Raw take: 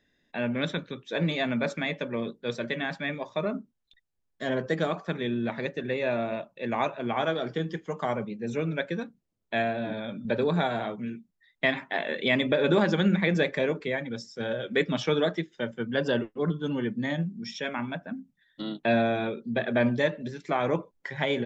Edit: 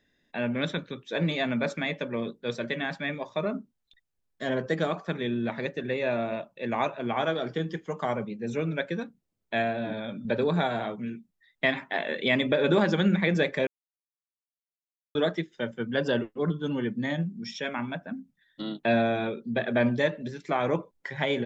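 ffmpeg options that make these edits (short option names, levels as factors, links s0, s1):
-filter_complex "[0:a]asplit=3[s0][s1][s2];[s0]atrim=end=13.67,asetpts=PTS-STARTPTS,afade=t=out:st=13.666:d=0.004:c=hsin[s3];[s1]atrim=start=13.67:end=15.15,asetpts=PTS-STARTPTS,volume=0[s4];[s2]atrim=start=15.15,asetpts=PTS-STARTPTS,afade=t=in:d=0.004:c=hsin[s5];[s3][s4][s5]concat=n=3:v=0:a=1"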